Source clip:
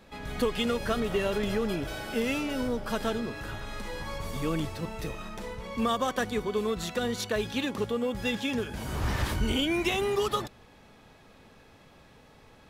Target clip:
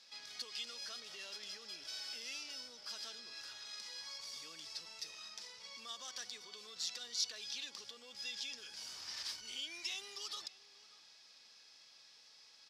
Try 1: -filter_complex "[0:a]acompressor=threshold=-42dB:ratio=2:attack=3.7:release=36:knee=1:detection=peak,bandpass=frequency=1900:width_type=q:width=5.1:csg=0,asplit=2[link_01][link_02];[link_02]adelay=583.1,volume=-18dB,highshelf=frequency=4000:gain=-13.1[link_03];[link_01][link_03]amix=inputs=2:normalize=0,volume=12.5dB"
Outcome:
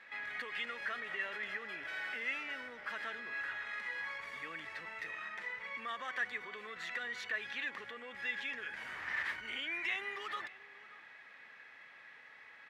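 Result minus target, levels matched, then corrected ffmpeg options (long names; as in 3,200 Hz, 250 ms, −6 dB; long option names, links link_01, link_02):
2,000 Hz band +11.5 dB
-filter_complex "[0:a]acompressor=threshold=-42dB:ratio=2:attack=3.7:release=36:knee=1:detection=peak,bandpass=frequency=5100:width_type=q:width=5.1:csg=0,asplit=2[link_01][link_02];[link_02]adelay=583.1,volume=-18dB,highshelf=frequency=4000:gain=-13.1[link_03];[link_01][link_03]amix=inputs=2:normalize=0,volume=12.5dB"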